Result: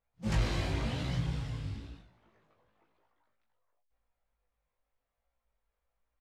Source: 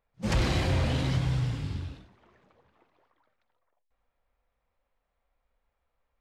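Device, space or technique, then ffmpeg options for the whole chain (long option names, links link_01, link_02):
double-tracked vocal: -filter_complex "[0:a]asplit=2[link_01][link_02];[link_02]adelay=18,volume=-4dB[link_03];[link_01][link_03]amix=inputs=2:normalize=0,flanger=delay=16.5:depth=3.4:speed=0.95,volume=-4.5dB"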